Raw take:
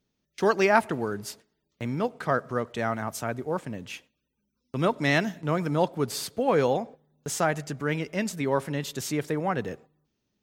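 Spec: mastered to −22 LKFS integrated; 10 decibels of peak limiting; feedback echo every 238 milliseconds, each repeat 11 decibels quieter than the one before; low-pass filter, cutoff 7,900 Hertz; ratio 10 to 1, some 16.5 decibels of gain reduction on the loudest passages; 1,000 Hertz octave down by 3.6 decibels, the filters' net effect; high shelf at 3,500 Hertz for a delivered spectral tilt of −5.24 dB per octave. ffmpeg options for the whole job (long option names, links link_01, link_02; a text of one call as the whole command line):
ffmpeg -i in.wav -af "lowpass=7900,equalizer=frequency=1000:width_type=o:gain=-4,highshelf=frequency=3500:gain=-8,acompressor=threshold=-36dB:ratio=10,alimiter=level_in=9dB:limit=-24dB:level=0:latency=1,volume=-9dB,aecho=1:1:238|476|714:0.282|0.0789|0.0221,volume=22dB" out.wav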